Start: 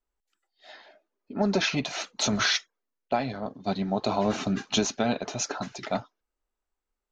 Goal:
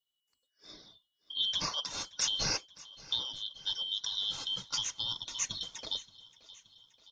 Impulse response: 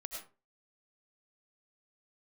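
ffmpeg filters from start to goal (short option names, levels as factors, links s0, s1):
-filter_complex "[0:a]afftfilt=real='real(if(lt(b,272),68*(eq(floor(b/68),0)*1+eq(floor(b/68),1)*3+eq(floor(b/68),2)*0+eq(floor(b/68),3)*2)+mod(b,68),b),0)':imag='imag(if(lt(b,272),68*(eq(floor(b/68),0)*1+eq(floor(b/68),1)*3+eq(floor(b/68),2)*0+eq(floor(b/68),3)*2)+mod(b,68),b),0)':win_size=2048:overlap=0.75,alimiter=limit=0.141:level=0:latency=1:release=490,highshelf=f=5500:g=9,asplit=2[s0][s1];[s1]aecho=0:1:575|1150|1725|2300|2875:0.0891|0.0517|0.03|0.0174|0.0101[s2];[s0][s2]amix=inputs=2:normalize=0,adynamicequalizer=threshold=0.00891:dfrequency=2800:dqfactor=1.7:tfrequency=2800:tqfactor=1.7:attack=5:release=100:ratio=0.375:range=2:mode=cutabove:tftype=bell,volume=0.501"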